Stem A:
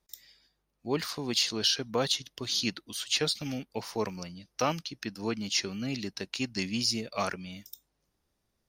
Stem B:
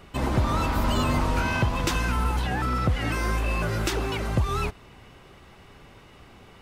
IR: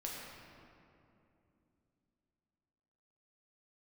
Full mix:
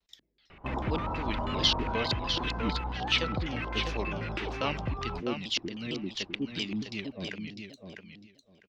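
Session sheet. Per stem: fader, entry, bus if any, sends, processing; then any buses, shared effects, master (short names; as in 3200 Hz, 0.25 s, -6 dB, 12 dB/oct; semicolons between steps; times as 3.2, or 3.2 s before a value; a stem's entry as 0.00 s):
-5.0 dB, 0.00 s, no send, echo send -6.5 dB, high shelf 5500 Hz +9.5 dB; LFO low-pass square 2.6 Hz 340–3200 Hz; shaped vibrato saw down 4.4 Hz, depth 250 cents
+2.0 dB, 0.50 s, no send, no echo send, LFO low-pass square 6.2 Hz 890–2500 Hz; auto duck -12 dB, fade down 0.85 s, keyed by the first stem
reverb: off
echo: feedback echo 0.652 s, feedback 17%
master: dry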